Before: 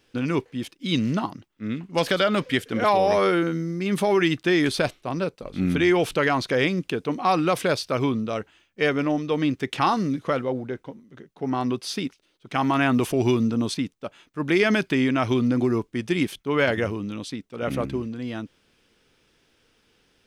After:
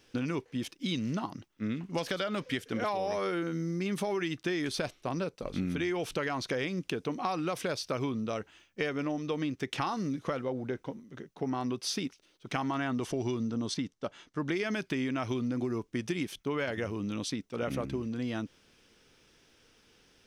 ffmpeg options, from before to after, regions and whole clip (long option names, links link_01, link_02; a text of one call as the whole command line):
ffmpeg -i in.wav -filter_complex "[0:a]asettb=1/sr,asplit=3[link_01][link_02][link_03];[link_01]atrim=end=12.634[link_04];[link_02]atrim=start=12.63:end=14.56,asetpts=PTS-STARTPTS,afade=type=in:duration=0.004:curve=qsin,afade=type=out:start_time=1.926:duration=0.004:curve=qsin,lowpass=8000,bandreject=frequency=2500:width=9.2[link_05];[link_03]atrim=start=14.556[link_06];[link_04][link_05]acrossfade=duration=0.004:curve1=hsin:curve2=qsin[link_07];[link_07][link_06]acrossfade=duration=0.004:curve1=qsin:curve2=hsin,equalizer=frequency=5800:width=3.7:gain=5.5,acompressor=threshold=-30dB:ratio=6" out.wav